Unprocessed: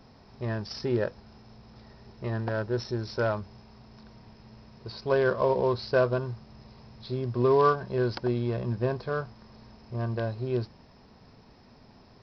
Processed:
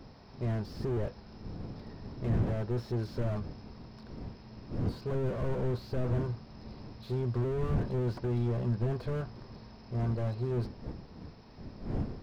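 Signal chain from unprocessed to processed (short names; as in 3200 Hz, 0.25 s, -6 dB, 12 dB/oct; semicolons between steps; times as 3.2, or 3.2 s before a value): wind noise 220 Hz -40 dBFS; slew limiter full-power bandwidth 10 Hz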